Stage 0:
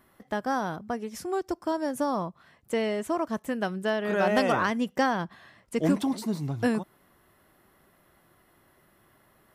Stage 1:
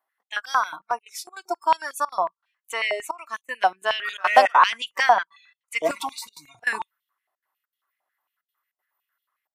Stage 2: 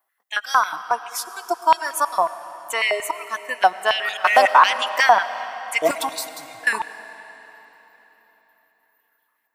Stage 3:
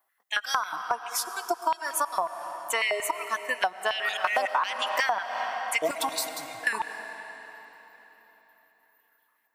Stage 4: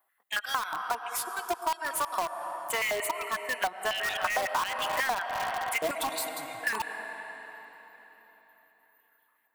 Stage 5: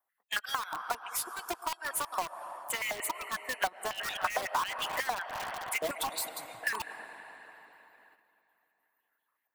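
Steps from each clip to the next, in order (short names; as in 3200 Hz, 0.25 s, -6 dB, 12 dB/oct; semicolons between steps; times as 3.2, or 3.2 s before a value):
spectral noise reduction 26 dB; step gate "xxx.xxxxxxxxx." 198 bpm -24 dB; stepped high-pass 11 Hz 760–3300 Hz; gain +5.5 dB
high shelf 11000 Hz +11 dB; digital reverb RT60 4.1 s, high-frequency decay 0.9×, pre-delay 60 ms, DRR 13 dB; maximiser +5 dB; gain -1 dB
compressor 8:1, threshold -23 dBFS, peak gain reduction 15 dB
bell 5600 Hz -10.5 dB 0.61 oct; in parallel at -5 dB: wrapped overs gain 24.5 dB; on the sum: gain -3.5 dB
gate -55 dBFS, range -6 dB; harmonic-percussive split harmonic -14 dB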